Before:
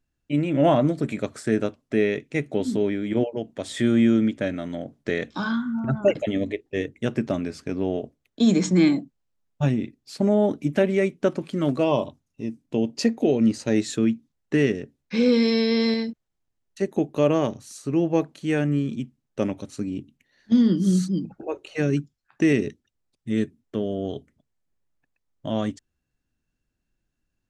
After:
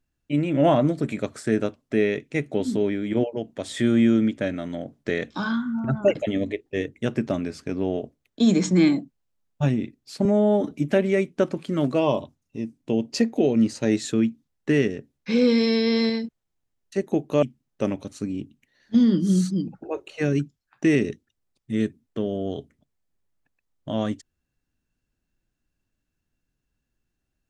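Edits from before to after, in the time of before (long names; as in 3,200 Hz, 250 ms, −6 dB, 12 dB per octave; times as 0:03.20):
0:10.25–0:10.56: time-stretch 1.5×
0:17.27–0:19.00: remove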